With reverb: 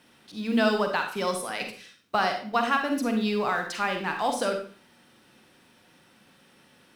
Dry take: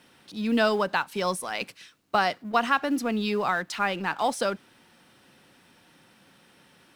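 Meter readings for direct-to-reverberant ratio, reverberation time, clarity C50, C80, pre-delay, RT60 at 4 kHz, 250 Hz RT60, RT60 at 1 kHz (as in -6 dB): 4.0 dB, 0.45 s, 5.5 dB, 10.5 dB, 37 ms, 0.40 s, 0.50 s, 0.45 s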